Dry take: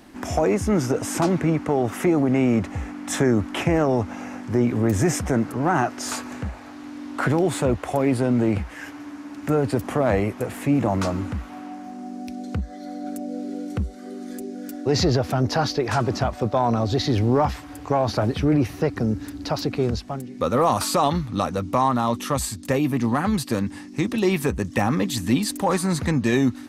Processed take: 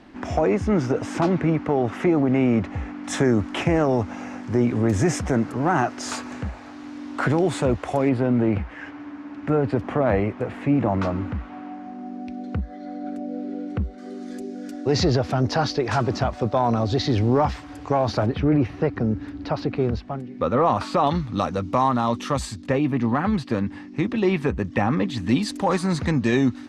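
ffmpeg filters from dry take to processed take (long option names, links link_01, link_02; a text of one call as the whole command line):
ffmpeg -i in.wav -af "asetnsamples=nb_out_samples=441:pad=0,asendcmd='3.04 lowpass f 7100;8.09 lowpass f 2800;13.98 lowpass f 6200;18.26 lowpass f 2800;21.07 lowpass f 5500;22.62 lowpass f 3100;25.29 lowpass f 5700',lowpass=3900" out.wav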